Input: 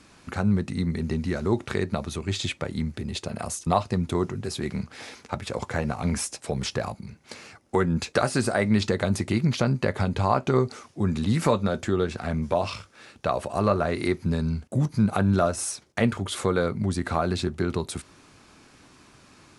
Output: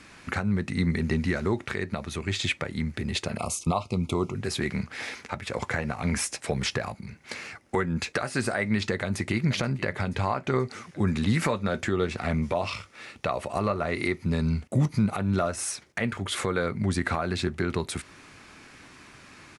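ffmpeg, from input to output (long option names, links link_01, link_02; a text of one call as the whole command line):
ffmpeg -i in.wav -filter_complex "[0:a]asettb=1/sr,asplit=3[link_01][link_02][link_03];[link_01]atrim=end=3.374[link_04];[link_02]atrim=start=3.37:end=4.35,asetpts=PTS-STARTPTS,afade=type=in:duration=0.004:curve=qsin,afade=type=out:start_time=0.976:duration=0.004:curve=qsin,asuperstop=centerf=1700:order=8:qfactor=2[link_05];[link_03]atrim=start=4.346[link_06];[link_04][link_05]acrossfade=duration=0.004:curve1=hsin:curve2=qsin[link_07];[link_07][link_06]acrossfade=duration=0.004:curve1=qsin:curve2=hsin,asplit=2[link_08][link_09];[link_09]afade=type=in:start_time=8.95:duration=0.01,afade=type=out:start_time=9.46:duration=0.01,aecho=0:1:480|960|1440|1920|2400|2880|3360:0.133352|0.0866789|0.0563413|0.0366218|0.0238042|0.0154727|0.0100573[link_10];[link_08][link_10]amix=inputs=2:normalize=0,asettb=1/sr,asplit=3[link_11][link_12][link_13];[link_11]atrim=end=11.934[link_14];[link_12]atrim=start=11.93:end=15.48,asetpts=PTS-STARTPTS,afade=type=in:duration=0.004:curve=qsin,afade=type=out:start_time=3.546:duration=0.004:curve=qsin,bandreject=frequency=1600:width=6.9[link_15];[link_13]atrim=start=15.476[link_16];[link_14][link_15]acrossfade=duration=0.004:curve1=hsin:curve2=qsin[link_17];[link_17][link_16]acrossfade=duration=0.004:curve1=qsin:curve2=hsin,equalizer=frequency=2000:width=1.4:gain=8,alimiter=limit=-15.5dB:level=0:latency=1:release=455,volume=1.5dB" out.wav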